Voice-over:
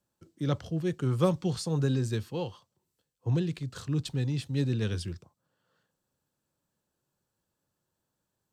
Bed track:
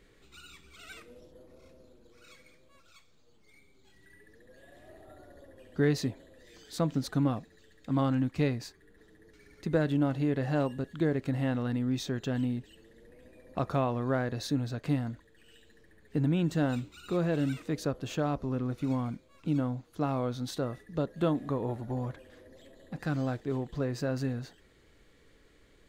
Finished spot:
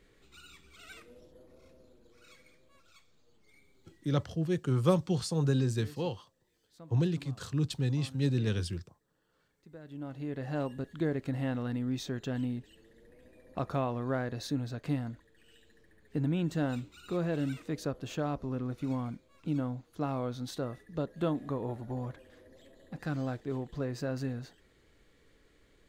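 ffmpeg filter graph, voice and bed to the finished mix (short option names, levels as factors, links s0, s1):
-filter_complex "[0:a]adelay=3650,volume=0.944[s0];[1:a]volume=7.08,afade=t=out:st=3.75:d=0.67:silence=0.1,afade=t=in:st=9.82:d=0.99:silence=0.105925[s1];[s0][s1]amix=inputs=2:normalize=0"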